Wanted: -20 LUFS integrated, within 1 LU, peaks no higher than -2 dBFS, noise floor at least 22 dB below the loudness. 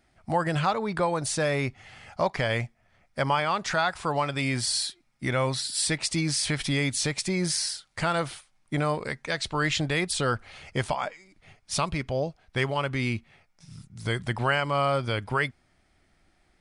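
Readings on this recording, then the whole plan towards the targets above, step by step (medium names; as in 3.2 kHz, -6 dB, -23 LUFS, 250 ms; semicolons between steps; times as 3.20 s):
loudness -27.5 LUFS; peak level -12.5 dBFS; loudness target -20.0 LUFS
-> trim +7.5 dB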